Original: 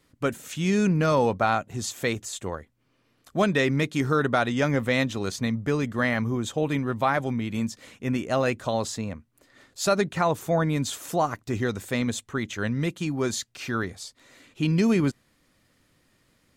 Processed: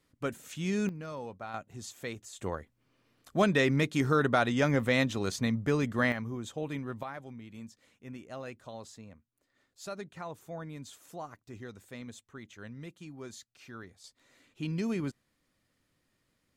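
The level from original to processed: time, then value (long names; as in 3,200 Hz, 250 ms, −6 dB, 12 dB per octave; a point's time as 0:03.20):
−8 dB
from 0:00.89 −19 dB
from 0:01.54 −12.5 dB
from 0:02.39 −3 dB
from 0:06.12 −10.5 dB
from 0:07.03 −18 dB
from 0:14.04 −11 dB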